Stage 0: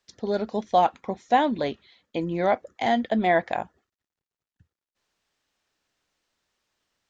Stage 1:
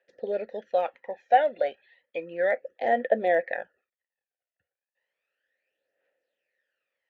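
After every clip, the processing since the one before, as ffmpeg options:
-filter_complex "[0:a]asplit=3[a][b][c];[a]bandpass=f=530:t=q:w=8,volume=0dB[d];[b]bandpass=f=1.84k:t=q:w=8,volume=-6dB[e];[c]bandpass=f=2.48k:t=q:w=8,volume=-9dB[f];[d][e][f]amix=inputs=3:normalize=0,equalizer=f=1.1k:w=0.56:g=13.5,aphaser=in_gain=1:out_gain=1:delay=1.5:decay=0.65:speed=0.33:type=triangular"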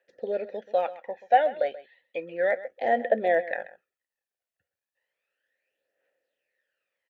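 -af "aecho=1:1:132:0.15"

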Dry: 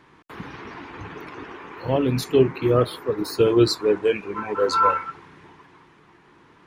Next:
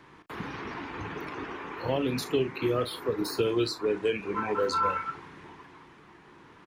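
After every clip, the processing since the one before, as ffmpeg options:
-filter_complex "[0:a]asplit=2[a][b];[b]adelay=36,volume=-12.5dB[c];[a][c]amix=inputs=2:normalize=0,acrossover=split=240|2000[d][e][f];[d]acompressor=threshold=-37dB:ratio=4[g];[e]acompressor=threshold=-27dB:ratio=4[h];[f]acompressor=threshold=-35dB:ratio=4[i];[g][h][i]amix=inputs=3:normalize=0"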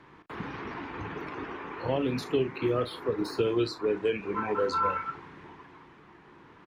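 -af "aemphasis=mode=reproduction:type=50kf"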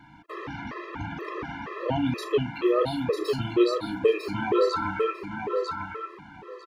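-af "aecho=1:1:949|1898|2847:0.596|0.101|0.0172,afftfilt=real='re*gt(sin(2*PI*2.1*pts/sr)*(1-2*mod(floor(b*sr/1024/340),2)),0)':imag='im*gt(sin(2*PI*2.1*pts/sr)*(1-2*mod(floor(b*sr/1024/340),2)),0)':win_size=1024:overlap=0.75,volume=5.5dB"

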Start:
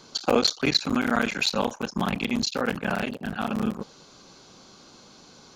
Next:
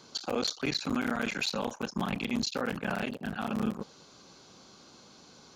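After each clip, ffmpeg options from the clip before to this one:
-af "highpass=41,alimiter=limit=-17.5dB:level=0:latency=1:release=10,volume=-4dB"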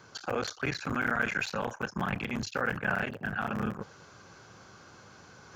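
-af "equalizer=f=100:t=o:w=0.67:g=11,equalizer=f=250:t=o:w=0.67:g=-6,equalizer=f=1.6k:t=o:w=0.67:g=9,equalizer=f=4k:t=o:w=0.67:g=-9,equalizer=f=10k:t=o:w=0.67:g=-10,areverse,acompressor=mode=upward:threshold=-47dB:ratio=2.5,areverse"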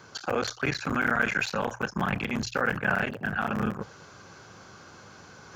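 -af "bandreject=f=60:t=h:w=6,bandreject=f=120:t=h:w=6,volume=4dB"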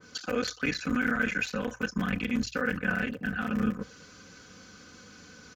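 -af "equalizer=f=830:w=1.3:g=-14.5,aecho=1:1:4:0.7,adynamicequalizer=threshold=0.00891:dfrequency=1900:dqfactor=0.7:tfrequency=1900:tqfactor=0.7:attack=5:release=100:ratio=0.375:range=2.5:mode=cutabove:tftype=highshelf"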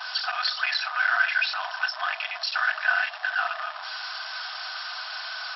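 -af "aeval=exprs='val(0)+0.5*0.0211*sgn(val(0))':c=same,equalizer=f=2.2k:w=3.1:g=-7,afftfilt=real='re*between(b*sr/4096,610,5600)':imag='im*between(b*sr/4096,610,5600)':win_size=4096:overlap=0.75,volume=7.5dB"

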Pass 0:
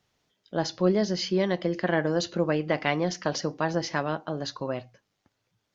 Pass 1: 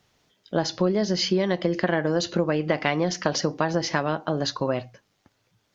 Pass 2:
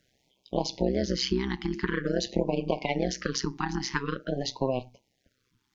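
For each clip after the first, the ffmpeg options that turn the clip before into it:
-af "acompressor=threshold=-26dB:ratio=6,volume=7.5dB"
-af "tremolo=f=130:d=0.974,afftfilt=real='re*(1-between(b*sr/1024,530*pow(1600/530,0.5+0.5*sin(2*PI*0.47*pts/sr))/1.41,530*pow(1600/530,0.5+0.5*sin(2*PI*0.47*pts/sr))*1.41))':imag='im*(1-between(b*sr/1024,530*pow(1600/530,0.5+0.5*sin(2*PI*0.47*pts/sr))/1.41,530*pow(1600/530,0.5+0.5*sin(2*PI*0.47*pts/sr))*1.41))':win_size=1024:overlap=0.75"

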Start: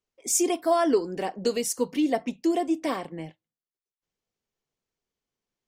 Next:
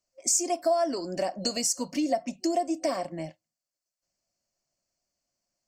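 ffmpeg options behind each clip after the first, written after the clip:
-af "superequalizer=7b=0.398:8b=2.82:13b=0.562:14b=3.16:15b=3.16,acompressor=threshold=-25dB:ratio=3"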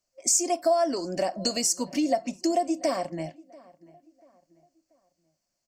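-filter_complex "[0:a]asplit=2[a][b];[b]adelay=687,lowpass=f=2.1k:p=1,volume=-23dB,asplit=2[c][d];[d]adelay=687,lowpass=f=2.1k:p=1,volume=0.4,asplit=2[e][f];[f]adelay=687,lowpass=f=2.1k:p=1,volume=0.4[g];[a][c][e][g]amix=inputs=4:normalize=0,volume=2dB"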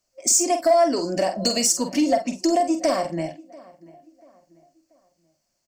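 -filter_complex "[0:a]asoftclip=type=tanh:threshold=-15dB,asplit=2[a][b];[b]adelay=47,volume=-8dB[c];[a][c]amix=inputs=2:normalize=0,volume=5.5dB"

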